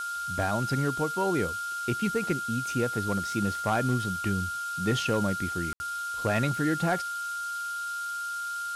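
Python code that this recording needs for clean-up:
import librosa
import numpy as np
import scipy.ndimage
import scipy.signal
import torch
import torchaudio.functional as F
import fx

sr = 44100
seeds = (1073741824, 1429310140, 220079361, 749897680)

y = fx.fix_declip(x, sr, threshold_db=-18.5)
y = fx.notch(y, sr, hz=1400.0, q=30.0)
y = fx.fix_ambience(y, sr, seeds[0], print_start_s=7.74, print_end_s=8.24, start_s=5.73, end_s=5.8)
y = fx.noise_reduce(y, sr, print_start_s=7.74, print_end_s=8.24, reduce_db=30.0)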